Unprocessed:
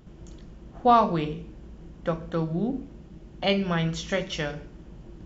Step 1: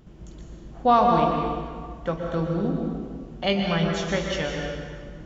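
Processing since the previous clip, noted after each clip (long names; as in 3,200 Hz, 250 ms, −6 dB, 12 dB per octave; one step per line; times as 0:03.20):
dense smooth reverb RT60 1.9 s, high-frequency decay 0.75×, pre-delay 110 ms, DRR 1.5 dB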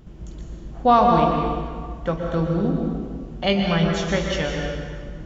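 low-shelf EQ 110 Hz +5.5 dB
level +2.5 dB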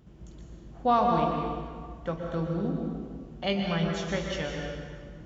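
high-pass filter 54 Hz
level −8 dB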